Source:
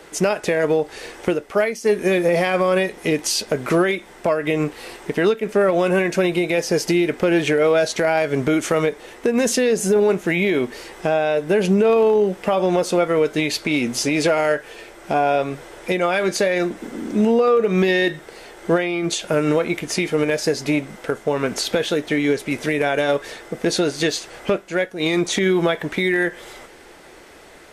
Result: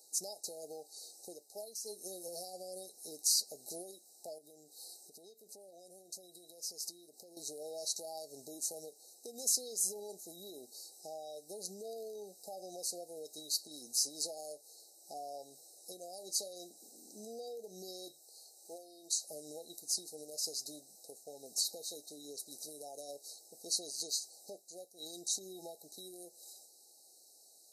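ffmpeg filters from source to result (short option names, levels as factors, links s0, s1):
-filter_complex "[0:a]asettb=1/sr,asplit=3[s0][s1][s2];[s0]atrim=end=4.384[s3];[s1]atrim=start=4.38:end=7.37,asetpts=PTS-STARTPTS,afade=t=in:d=0.004:c=qsin,afade=t=out:st=2.986:d=0.004:c=qsin,acompressor=threshold=0.0398:ratio=3:attack=3.2:release=140:knee=1:detection=peak[s4];[s2]atrim=start=7.366[s5];[s3][s4]acrossfade=d=0.004:c1=hsin:c2=qsin[s6];[s6][s5]acrossfade=d=0.004:c1=qsin:c2=hsin,asettb=1/sr,asplit=3[s7][s8][s9];[s7]atrim=end=18.114[s10];[s8]atrim=start=18.11:end=19.28,asetpts=PTS-STARTPTS,afade=t=in:d=0.004:c=qsin,afade=t=out:st=1.166:d=0.004:c=qsin,equalizer=f=180:t=o:w=1.2:g=-12.5[s11];[s9]atrim=start=19.276[s12];[s10][s11]acrossfade=d=0.004:c1=hsin:c2=qsin[s13];[s13][s12]acrossfade=d=0.004:c1=qsin:c2=hsin,afftfilt=real='re*(1-between(b*sr/4096,850,3800))':imag='im*(1-between(b*sr/4096,850,3800))':win_size=4096:overlap=0.75,aderivative,volume=0.501"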